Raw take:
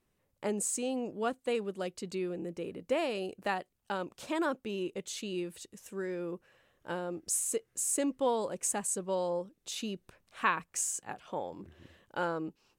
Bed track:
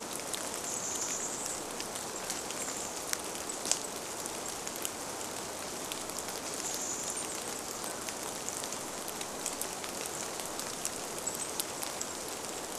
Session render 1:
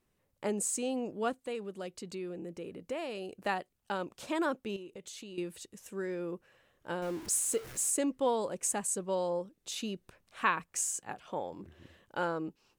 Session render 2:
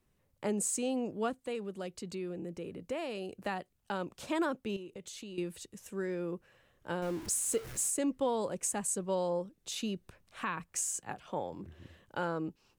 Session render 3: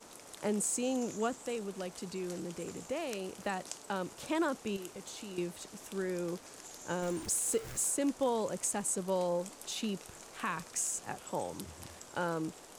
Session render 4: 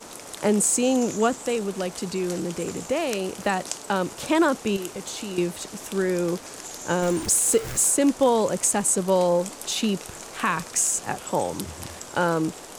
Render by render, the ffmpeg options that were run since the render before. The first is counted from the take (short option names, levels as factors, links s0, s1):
-filter_complex "[0:a]asettb=1/sr,asplit=3[s0][s1][s2];[s0]atrim=end=1.374[s3];[s1]atrim=start=1.37:end=3.33,asetpts=PTS-STARTPTS,afade=t=in:d=0.004:c=qsin,afade=t=out:st=1.956:d=0.004:c=qsin,acompressor=threshold=0.00631:ratio=1.5:attack=3.2:release=140:knee=1:detection=peak[s4];[s2]atrim=start=3.326[s5];[s3][s4]acrossfade=d=0.004:c1=hsin:c2=qsin[s6];[s6][s5]acrossfade=d=0.004:c1=qsin:c2=hsin,asettb=1/sr,asplit=3[s7][s8][s9];[s7]atrim=end=4.764[s10];[s8]atrim=start=4.76:end=5.38,asetpts=PTS-STARTPTS,afade=t=in:d=0.004:c=qsin,afade=t=out:st=0.616:d=0.004:c=qsin,acompressor=threshold=0.00794:ratio=12:attack=3.2:release=140:knee=1:detection=peak[s11];[s9]atrim=start=5.376[s12];[s10][s11]acrossfade=d=0.004:c1=hsin:c2=qsin[s13];[s13][s12]acrossfade=d=0.004:c1=qsin:c2=hsin,asettb=1/sr,asplit=3[s14][s15][s16];[s14]atrim=end=7.024[s17];[s15]atrim=start=7.02:end=7.9,asetpts=PTS-STARTPTS,afade=t=in:d=0.004:c=qsin,afade=t=out:st=0.876:d=0.004:c=qsin,aeval=exprs='val(0)+0.5*0.00891*sgn(val(0))':c=same[s18];[s16]atrim=start=7.896[s19];[s17][s18]acrossfade=d=0.004:c1=hsin:c2=qsin[s20];[s20][s19]acrossfade=d=0.004:c1=qsin:c2=hsin"
-filter_complex "[0:a]acrossover=split=180[s0][s1];[s0]acontrast=34[s2];[s1]alimiter=limit=0.075:level=0:latency=1:release=182[s3];[s2][s3]amix=inputs=2:normalize=0"
-filter_complex "[1:a]volume=0.211[s0];[0:a][s0]amix=inputs=2:normalize=0"
-af "volume=3.98"